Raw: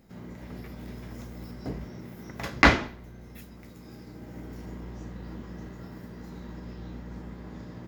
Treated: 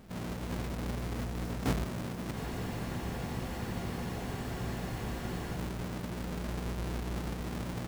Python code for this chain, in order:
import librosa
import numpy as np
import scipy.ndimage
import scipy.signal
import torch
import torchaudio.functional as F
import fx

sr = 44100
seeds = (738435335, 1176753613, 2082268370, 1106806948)

y = fx.halfwave_hold(x, sr)
y = fx.spec_freeze(y, sr, seeds[0], at_s=2.37, hold_s=3.18)